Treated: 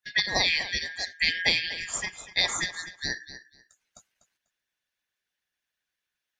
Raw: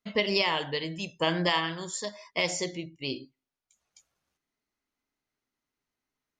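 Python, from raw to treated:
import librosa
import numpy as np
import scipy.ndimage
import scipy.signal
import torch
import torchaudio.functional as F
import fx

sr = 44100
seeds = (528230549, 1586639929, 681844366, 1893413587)

y = fx.band_shuffle(x, sr, order='4123')
y = fx.echo_feedback(y, sr, ms=246, feedback_pct=19, wet_db=-13)
y = fx.hpss(y, sr, part='harmonic', gain_db=-9)
y = y * 10.0 ** (5.0 / 20.0)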